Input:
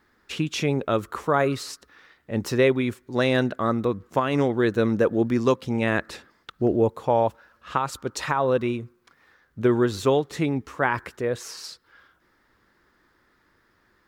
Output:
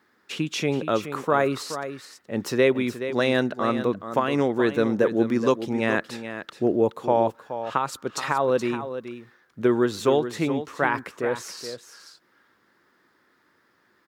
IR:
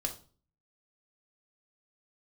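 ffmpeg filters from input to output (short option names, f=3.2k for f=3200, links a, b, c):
-filter_complex "[0:a]highpass=160,asplit=2[a][b];[b]aecho=0:1:424:0.299[c];[a][c]amix=inputs=2:normalize=0"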